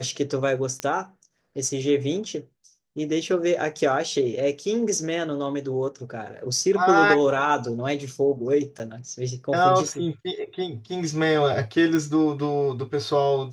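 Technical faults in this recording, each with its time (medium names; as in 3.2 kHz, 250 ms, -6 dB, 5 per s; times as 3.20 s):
0.80 s: pop -13 dBFS
8.79–8.80 s: dropout 9.2 ms
11.95 s: pop -13 dBFS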